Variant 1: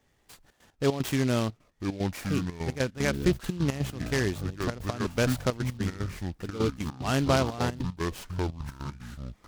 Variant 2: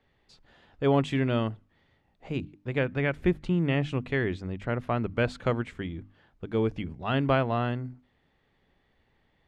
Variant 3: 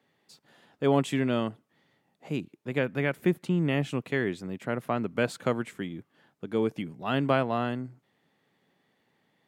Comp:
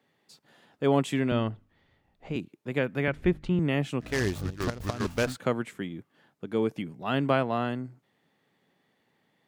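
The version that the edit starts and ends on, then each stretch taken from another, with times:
3
1.32–2.36 s: from 2
3.08–3.59 s: from 2
4.11–5.26 s: from 1, crossfade 0.24 s

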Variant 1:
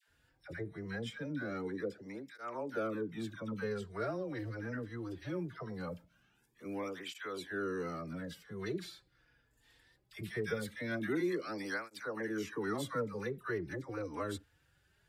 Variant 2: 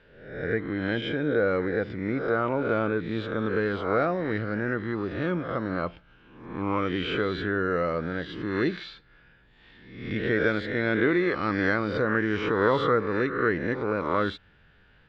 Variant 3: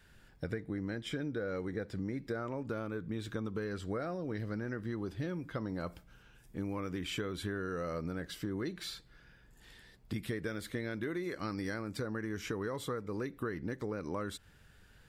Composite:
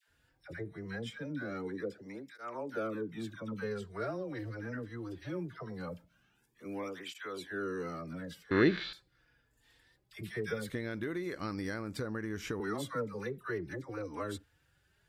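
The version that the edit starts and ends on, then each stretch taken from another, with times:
1
8.51–8.93 s: from 2
10.70–12.60 s: from 3

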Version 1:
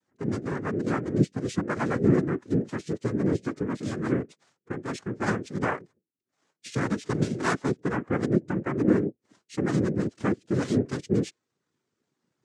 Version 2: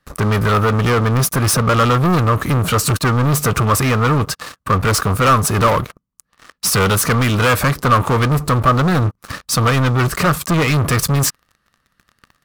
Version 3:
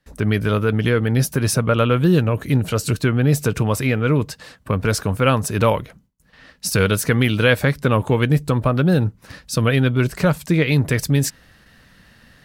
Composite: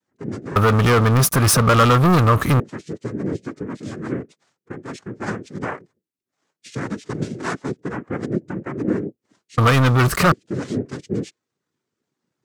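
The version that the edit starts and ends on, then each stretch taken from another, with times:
1
0.56–2.60 s: from 2
9.58–10.32 s: from 2
not used: 3

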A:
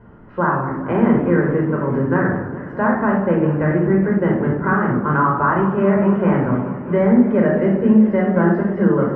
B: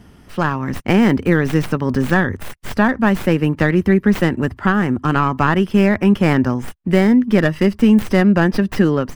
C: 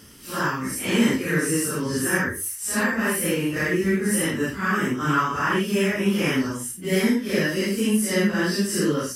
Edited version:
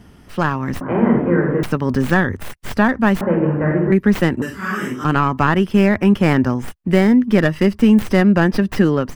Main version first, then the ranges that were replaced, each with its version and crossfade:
B
0.81–1.63 s: from A
3.21–3.92 s: from A
4.42–5.04 s: from C

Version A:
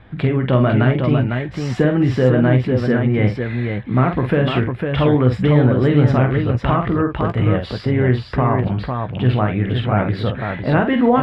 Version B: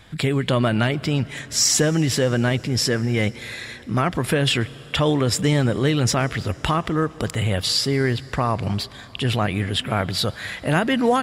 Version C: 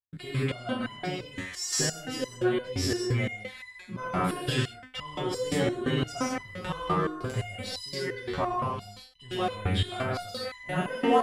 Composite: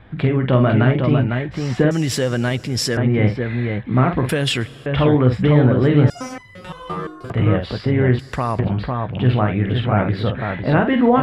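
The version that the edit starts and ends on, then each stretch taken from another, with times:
A
1.91–2.97 s: from B
4.29–4.86 s: from B
6.10–7.30 s: from C
8.19–8.59 s: from B

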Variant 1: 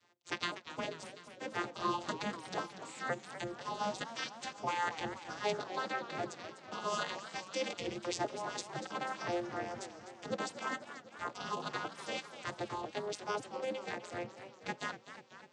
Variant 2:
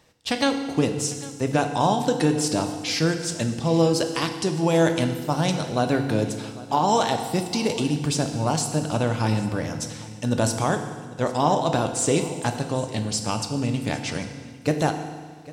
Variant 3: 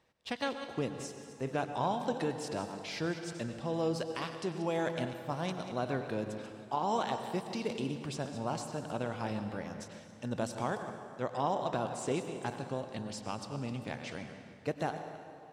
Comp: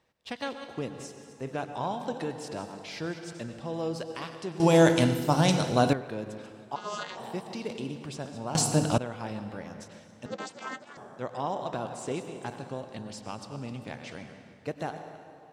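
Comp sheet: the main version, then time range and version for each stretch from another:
3
4.60–5.93 s: from 2
6.76–7.17 s: from 1
8.55–8.98 s: from 2
10.26–10.97 s: from 1

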